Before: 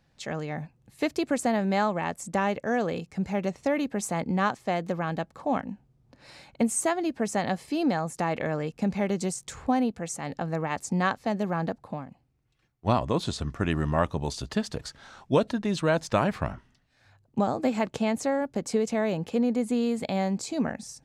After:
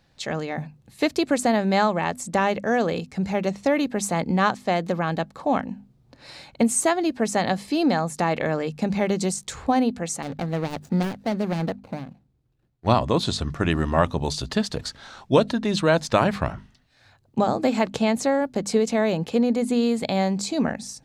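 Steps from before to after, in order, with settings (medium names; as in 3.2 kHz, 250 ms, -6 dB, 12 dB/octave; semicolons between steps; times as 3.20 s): 10.22–12.87 s: median filter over 41 samples; peaking EQ 4 kHz +4.5 dB 0.54 oct; hum notches 50/100/150/200/250 Hz; trim +5 dB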